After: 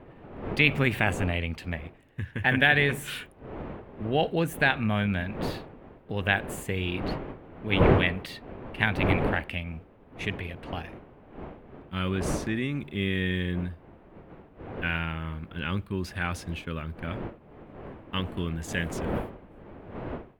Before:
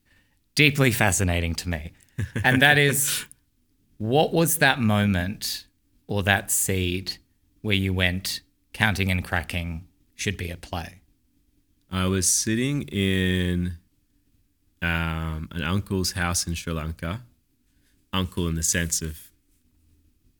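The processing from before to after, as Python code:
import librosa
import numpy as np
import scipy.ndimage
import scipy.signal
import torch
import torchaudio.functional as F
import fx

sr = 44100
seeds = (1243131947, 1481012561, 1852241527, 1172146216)

y = fx.dmg_wind(x, sr, seeds[0], corner_hz=470.0, level_db=-30.0)
y = fx.high_shelf_res(y, sr, hz=4000.0, db=-12.5, q=1.5)
y = F.gain(torch.from_numpy(y), -5.5).numpy()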